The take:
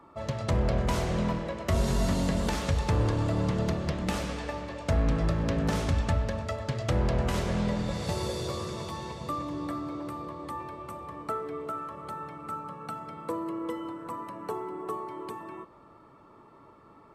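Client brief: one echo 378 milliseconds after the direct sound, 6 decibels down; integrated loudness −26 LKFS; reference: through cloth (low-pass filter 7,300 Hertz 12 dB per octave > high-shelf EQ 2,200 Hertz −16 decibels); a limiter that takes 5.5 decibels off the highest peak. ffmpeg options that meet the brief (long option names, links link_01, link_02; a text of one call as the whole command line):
ffmpeg -i in.wav -af "alimiter=limit=-22dB:level=0:latency=1,lowpass=7300,highshelf=frequency=2200:gain=-16,aecho=1:1:378:0.501,volume=7.5dB" out.wav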